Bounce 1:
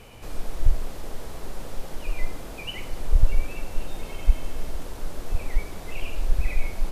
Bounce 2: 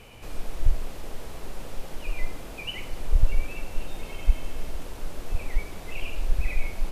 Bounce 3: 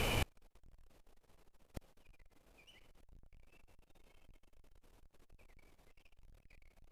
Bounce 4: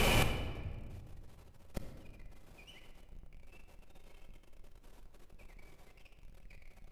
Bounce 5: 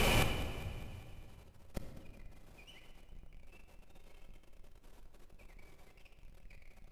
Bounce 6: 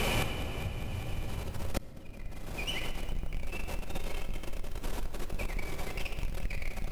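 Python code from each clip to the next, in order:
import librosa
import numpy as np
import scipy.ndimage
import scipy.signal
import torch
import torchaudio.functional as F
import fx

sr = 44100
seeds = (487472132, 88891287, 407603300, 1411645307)

y1 = fx.peak_eq(x, sr, hz=2600.0, db=3.5, octaves=0.64)
y1 = y1 * librosa.db_to_amplitude(-2.0)
y2 = fx.tube_stage(y1, sr, drive_db=33.0, bias=0.4)
y2 = fx.gate_flip(y2, sr, shuts_db=-35.0, range_db=-39)
y2 = y2 * librosa.db_to_amplitude(15.0)
y3 = fx.room_shoebox(y2, sr, seeds[0], volume_m3=1900.0, walls='mixed', distance_m=1.1)
y3 = y3 * librosa.db_to_amplitude(6.0)
y4 = fx.echo_feedback(y3, sr, ms=201, feedback_pct=58, wet_db=-15.5)
y4 = y4 * librosa.db_to_amplitude(-1.0)
y5 = fx.recorder_agc(y4, sr, target_db=-24.5, rise_db_per_s=25.0, max_gain_db=30)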